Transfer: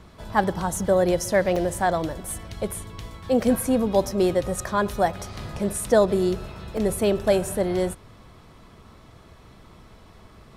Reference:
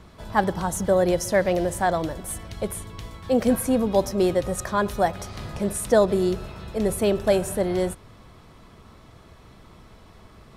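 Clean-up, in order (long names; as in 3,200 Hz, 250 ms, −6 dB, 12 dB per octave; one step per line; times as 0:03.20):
repair the gap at 0:01.56/0:06.77, 3.8 ms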